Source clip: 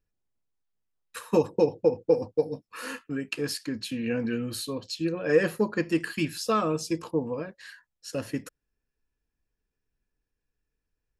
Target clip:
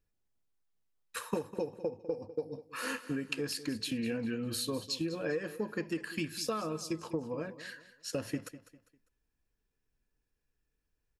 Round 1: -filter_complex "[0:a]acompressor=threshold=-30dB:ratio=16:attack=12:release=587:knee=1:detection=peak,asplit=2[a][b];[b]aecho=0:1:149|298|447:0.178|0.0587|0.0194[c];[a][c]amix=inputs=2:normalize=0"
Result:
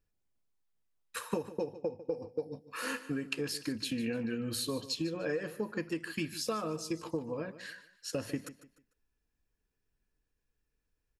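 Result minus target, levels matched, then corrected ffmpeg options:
echo 51 ms early
-filter_complex "[0:a]acompressor=threshold=-30dB:ratio=16:attack=12:release=587:knee=1:detection=peak,asplit=2[a][b];[b]aecho=0:1:200|400|600:0.178|0.0587|0.0194[c];[a][c]amix=inputs=2:normalize=0"

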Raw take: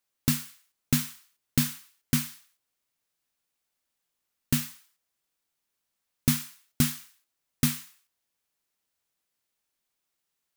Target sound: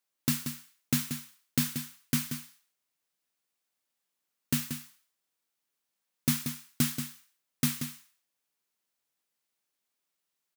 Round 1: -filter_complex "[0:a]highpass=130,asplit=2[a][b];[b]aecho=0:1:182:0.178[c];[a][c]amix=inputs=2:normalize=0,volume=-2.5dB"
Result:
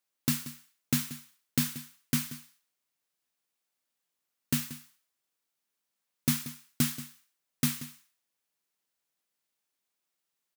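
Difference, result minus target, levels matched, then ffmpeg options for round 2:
echo-to-direct -6.5 dB
-filter_complex "[0:a]highpass=130,asplit=2[a][b];[b]aecho=0:1:182:0.376[c];[a][c]amix=inputs=2:normalize=0,volume=-2.5dB"

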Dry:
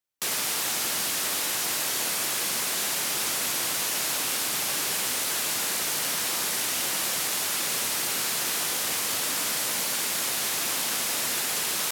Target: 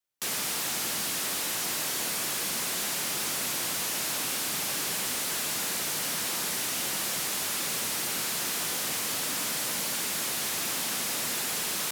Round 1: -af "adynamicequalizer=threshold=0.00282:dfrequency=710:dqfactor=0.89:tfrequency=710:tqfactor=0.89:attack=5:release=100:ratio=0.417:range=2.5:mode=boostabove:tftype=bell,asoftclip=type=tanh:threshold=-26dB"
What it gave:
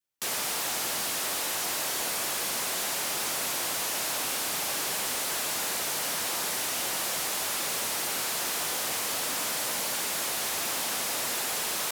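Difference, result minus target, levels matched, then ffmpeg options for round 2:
1000 Hz band +3.0 dB
-af "adynamicequalizer=threshold=0.00282:dfrequency=180:dqfactor=0.89:tfrequency=180:tqfactor=0.89:attack=5:release=100:ratio=0.417:range=2.5:mode=boostabove:tftype=bell,asoftclip=type=tanh:threshold=-26dB"

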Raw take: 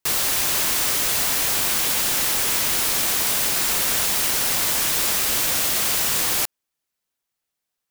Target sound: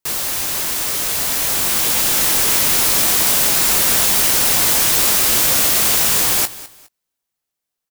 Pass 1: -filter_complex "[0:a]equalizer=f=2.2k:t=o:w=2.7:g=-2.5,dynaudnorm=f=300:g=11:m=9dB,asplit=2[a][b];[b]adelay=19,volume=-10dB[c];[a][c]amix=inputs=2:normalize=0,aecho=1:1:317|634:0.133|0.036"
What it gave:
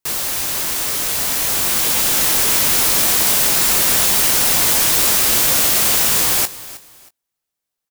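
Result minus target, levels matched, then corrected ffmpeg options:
echo 0.111 s late
-filter_complex "[0:a]equalizer=f=2.2k:t=o:w=2.7:g=-2.5,dynaudnorm=f=300:g=11:m=9dB,asplit=2[a][b];[b]adelay=19,volume=-10dB[c];[a][c]amix=inputs=2:normalize=0,aecho=1:1:206|412:0.133|0.036"

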